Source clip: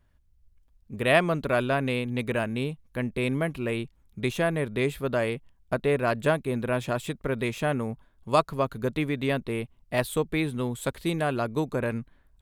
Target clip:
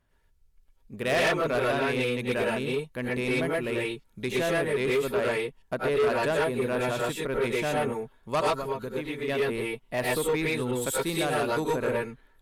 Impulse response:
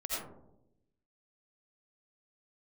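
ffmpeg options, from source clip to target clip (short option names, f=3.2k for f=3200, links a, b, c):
-filter_complex "[0:a]asettb=1/sr,asplit=3[a][b][c];[a]atrim=end=8.554[d];[b]atrim=start=8.55:end=9.28,asetpts=PTS-STARTPTS,afade=t=in:d=0.004:c=qsin,afade=t=out:st=0.726:d=0.004:c=qsin,acompressor=threshold=-32dB:ratio=3[e];[c]atrim=start=9.276[f];[d][e]acrossfade=d=0.004:c1=hsin:c2=qsin[g];[g][f]acrossfade=d=0.004:c1=qsin:c2=hsin,lowshelf=f=130:g=-9[h];[1:a]atrim=start_sample=2205,afade=t=out:st=0.14:d=0.01,atrim=end_sample=6615,asetrate=31311,aresample=44100[i];[h][i]afir=irnorm=-1:irlink=0,asoftclip=type=tanh:threshold=-21.5dB,asettb=1/sr,asplit=3[j][k][l];[j]atrim=end=10.714[m];[k]atrim=start=10.71:end=11.76,asetpts=PTS-STARTPTS,afade=t=in:d=0.004:c=qsin,afade=t=out:st=1.046:d=0.004:c=qsin,adynamicequalizer=threshold=0.00501:dfrequency=4000:dqfactor=0.7:tfrequency=4000:tqfactor=0.7:attack=5:release=100:ratio=0.375:range=3:mode=boostabove:tftype=highshelf[n];[l]atrim=start=11.756[o];[m][n]acrossfade=d=0.004:c1=hsin:c2=qsin[p];[p][o]acrossfade=d=0.004:c1=qsin:c2=hsin,volume=1.5dB"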